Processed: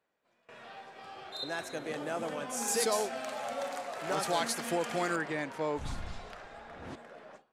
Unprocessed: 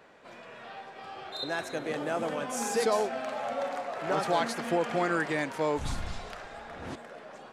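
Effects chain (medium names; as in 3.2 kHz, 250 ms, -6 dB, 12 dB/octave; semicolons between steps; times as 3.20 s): peaking EQ 13 kHz +5 dB 2.1 oct, from 2.68 s +14 dB, from 5.16 s -3.5 dB; gate with hold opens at -37 dBFS; trim -4.5 dB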